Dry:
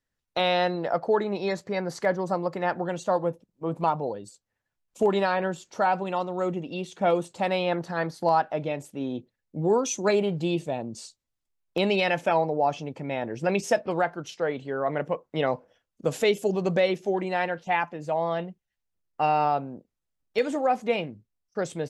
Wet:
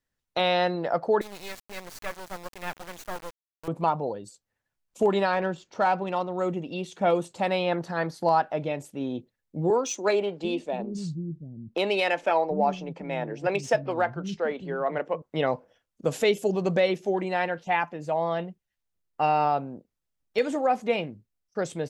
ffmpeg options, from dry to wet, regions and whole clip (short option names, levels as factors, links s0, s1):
-filter_complex "[0:a]asettb=1/sr,asplit=3[s0][s1][s2];[s0]atrim=end=1.214[s3];[s1]atrim=start=1.21:end=3.68,asetpts=PTS-STARTPTS,afade=t=in:d=0.004:c=qsin,afade=t=out:st=2.466:d=0.004:c=qsin,highpass=f=1400:p=1,highshelf=f=9200:g=2.5,acrusher=bits=4:dc=4:mix=0:aa=0.000001[s4];[s2]atrim=start=3.676[s5];[s3][s4]acrossfade=d=0.004:c1=hsin:c2=qsin[s6];[s6][s5]acrossfade=d=0.004:c1=qsin:c2=hsin,asettb=1/sr,asplit=3[s7][s8][s9];[s7]atrim=end=5.334[s10];[s8]atrim=start=5.33:end=6.37,asetpts=PTS-STARTPTS,afade=t=in:d=0.004:c=qsin,afade=t=out:st=1.036:d=0.004:c=qsin,equalizer=f=5700:w=0.65:g=3,adynamicsmooth=sensitivity=3:basefreq=3800[s11];[s9]atrim=start=6.366[s12];[s10][s11]acrossfade=d=0.004:c1=hsin:c2=qsin[s13];[s13][s12]acrossfade=d=0.004:c1=qsin:c2=hsin,asettb=1/sr,asplit=3[s14][s15][s16];[s14]atrim=end=9.704[s17];[s15]atrim=start=9.7:end=15.22,asetpts=PTS-STARTPTS,afade=t=in:d=0.004:c=qsin,afade=t=out:st=5.516:d=0.004:c=qsin,adynamicsmooth=sensitivity=3:basefreq=6700,acrossover=split=240[s18][s19];[s18]adelay=740[s20];[s20][s19]amix=inputs=2:normalize=0,atrim=end_sample=243432[s21];[s16]atrim=start=15.216[s22];[s17][s21]acrossfade=d=0.004:c1=hsin:c2=qsin[s23];[s23][s22]acrossfade=d=0.004:c1=qsin:c2=hsin"